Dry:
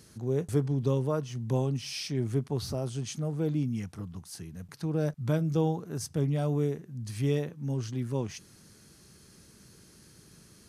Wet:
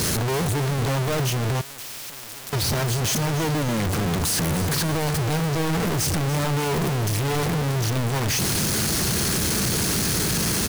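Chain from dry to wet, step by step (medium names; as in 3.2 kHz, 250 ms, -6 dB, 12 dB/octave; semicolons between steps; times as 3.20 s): one-bit comparator; feedback delay 289 ms, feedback 58%, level -13.5 dB; 1.61–2.53 s: spectrum-flattening compressor 4:1; trim +8.5 dB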